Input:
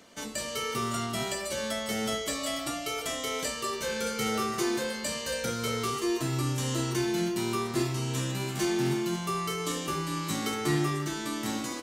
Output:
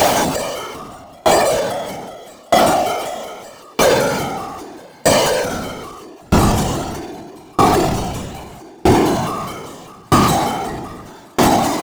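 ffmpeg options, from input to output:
-filter_complex "[0:a]aeval=exprs='val(0)+0.5*0.02*sgn(val(0))':c=same,equalizer=f=740:w=2.3:g=14.5,bandreject=f=480:w=12,afftfilt=real='hypot(re,im)*cos(2*PI*random(0))':imag='hypot(re,im)*sin(2*PI*random(1))':win_size=512:overlap=0.75,acrossover=split=1300[s0][s1];[s0]aecho=1:1:220:0.15[s2];[s1]asoftclip=type=tanh:threshold=0.0119[s3];[s2][s3]amix=inputs=2:normalize=0,alimiter=level_in=29.9:limit=0.891:release=50:level=0:latency=1,aeval=exprs='val(0)*pow(10,-35*if(lt(mod(0.79*n/s,1),2*abs(0.79)/1000),1-mod(0.79*n/s,1)/(2*abs(0.79)/1000),(mod(0.79*n/s,1)-2*abs(0.79)/1000)/(1-2*abs(0.79)/1000))/20)':c=same"

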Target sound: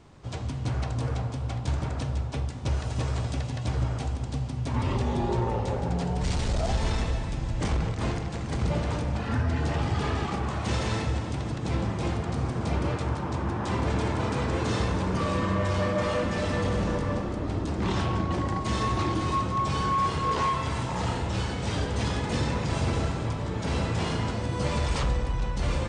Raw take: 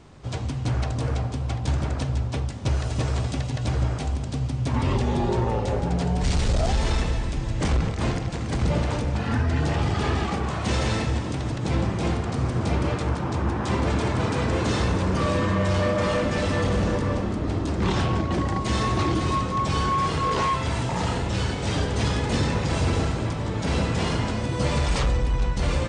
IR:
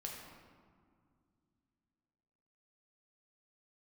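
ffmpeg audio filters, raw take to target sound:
-filter_complex "[0:a]asplit=2[s0][s1];[s1]equalizer=f=1000:w=1.5:g=4.5[s2];[1:a]atrim=start_sample=2205,asetrate=32634,aresample=44100[s3];[s2][s3]afir=irnorm=-1:irlink=0,volume=0.501[s4];[s0][s4]amix=inputs=2:normalize=0,volume=0.447"

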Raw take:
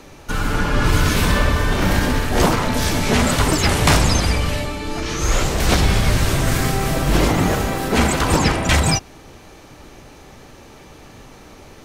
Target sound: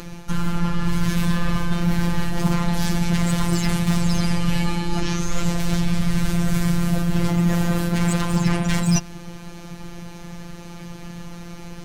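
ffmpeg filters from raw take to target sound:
-filter_complex "[0:a]lowshelf=f=270:t=q:w=1.5:g=7.5,acrossover=split=230[s0][s1];[s1]asoftclip=type=hard:threshold=0.15[s2];[s0][s2]amix=inputs=2:normalize=0,afftfilt=real='hypot(re,im)*cos(PI*b)':imag='0':win_size=1024:overlap=0.75,areverse,acompressor=threshold=0.1:ratio=8,areverse,aeval=exprs='0.335*(cos(1*acos(clip(val(0)/0.335,-1,1)))-cos(1*PI/2))+0.00211*(cos(6*acos(clip(val(0)/0.335,-1,1)))-cos(6*PI/2))':c=same,acompressor=mode=upward:threshold=0.0141:ratio=2.5,volume=1.78"

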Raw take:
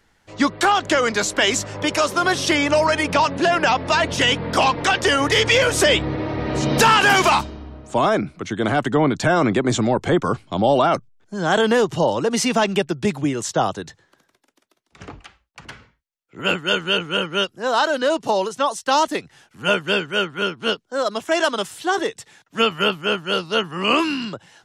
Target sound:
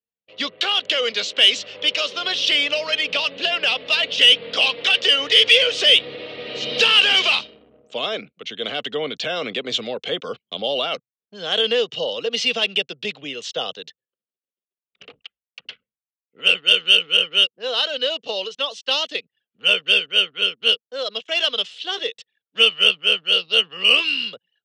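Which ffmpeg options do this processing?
-af "anlmdn=0.631,highpass=260,equalizer=f=330:t=q:w=4:g=-9,equalizer=f=480:t=q:w=4:g=10,equalizer=f=920:t=q:w=4:g=-9,equalizer=f=1900:t=q:w=4:g=5,equalizer=f=2900:t=q:w=4:g=5,lowpass=f=3600:w=0.5412,lowpass=f=3600:w=1.3066,aexciter=amount=8.9:drive=5.7:freq=2700,volume=0.335"

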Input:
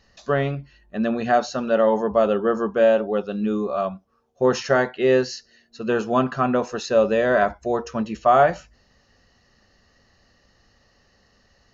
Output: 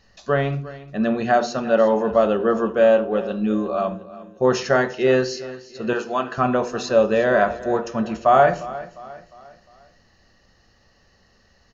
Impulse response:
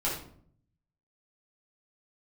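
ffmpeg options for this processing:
-filter_complex "[0:a]asettb=1/sr,asplit=3[s0][s1][s2];[s0]atrim=end=5.934[s3];[s1]atrim=start=5.93:end=6.38,asetpts=PTS-STARTPTS,afade=t=in:d=0.004:c=qsin,afade=t=out:st=0.446:d=0.004:c=qsin,highpass=f=860:p=1[s4];[s2]atrim=start=6.376[s5];[s3][s4]acrossfade=d=0.004:c1=hsin:c2=qsin[s6];[s6][s5]acrossfade=d=0.004:c1=qsin:c2=hsin,aecho=1:1:353|706|1059|1412:0.141|0.0607|0.0261|0.0112,asplit=2[s7][s8];[1:a]atrim=start_sample=2205,afade=t=out:st=0.31:d=0.01,atrim=end_sample=14112,asetrate=48510,aresample=44100[s9];[s8][s9]afir=irnorm=-1:irlink=0,volume=0.158[s10];[s7][s10]amix=inputs=2:normalize=0"

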